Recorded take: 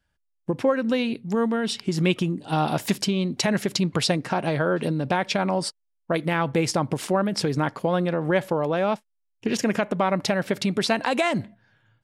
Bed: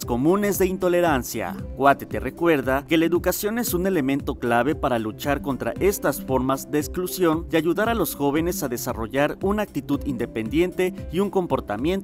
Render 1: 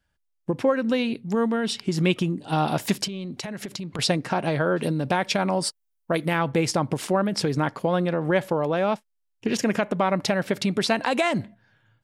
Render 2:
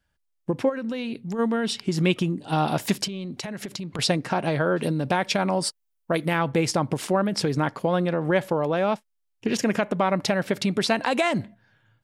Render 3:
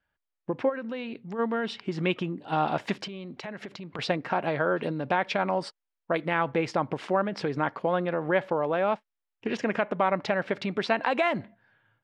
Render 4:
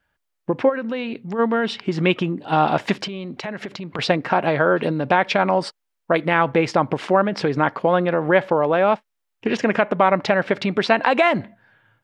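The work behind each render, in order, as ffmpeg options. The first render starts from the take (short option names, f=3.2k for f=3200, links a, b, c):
-filter_complex "[0:a]asettb=1/sr,asplit=3[a][b][c];[a]atrim=end=3.064[d];[b]atrim=start=3.06:end=3.99,asetpts=PTS-STARTPTS,afade=t=in:d=0.004:c=qsin,afade=t=out:st=0.926:d=0.004:c=qsin,acompressor=threshold=-29dB:ratio=12:attack=3.2:release=140:knee=1:detection=peak[e];[c]atrim=start=3.986[f];[d][e]acrossfade=d=0.004:c1=hsin:c2=qsin[g];[g][f]acrossfade=d=0.004:c1=qsin:c2=hsin,asettb=1/sr,asplit=3[h][i][j];[h]atrim=end=4.774[k];[i]atrim=start=4.77:end=6.39,asetpts=PTS-STARTPTS,afade=t=in:d=0.004:c=qsin,afade=t=out:st=1.616:d=0.004:c=qsin,highshelf=f=9.4k:g=10[l];[j]atrim=start=6.386[m];[k][l]acrossfade=d=0.004:c1=hsin:c2=qsin[n];[n][m]acrossfade=d=0.004:c1=qsin:c2=hsin"
-filter_complex "[0:a]asplit=3[a][b][c];[a]afade=t=out:st=0.68:d=0.02[d];[b]acompressor=threshold=-27dB:ratio=4:attack=3.2:release=140:knee=1:detection=peak,afade=t=in:st=0.68:d=0.02,afade=t=out:st=1.38:d=0.02[e];[c]afade=t=in:st=1.38:d=0.02[f];[d][e][f]amix=inputs=3:normalize=0"
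-af "lowpass=2.5k,lowshelf=f=270:g=-11.5"
-af "volume=8.5dB"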